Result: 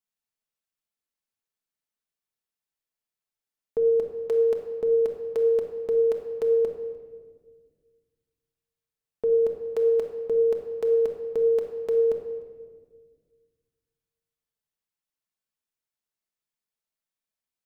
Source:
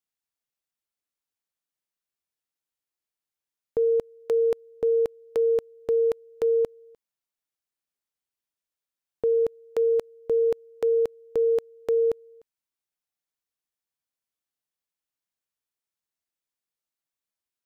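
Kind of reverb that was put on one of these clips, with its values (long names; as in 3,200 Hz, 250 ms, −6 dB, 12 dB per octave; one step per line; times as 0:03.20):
rectangular room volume 1,800 cubic metres, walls mixed, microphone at 1.5 metres
level −3.5 dB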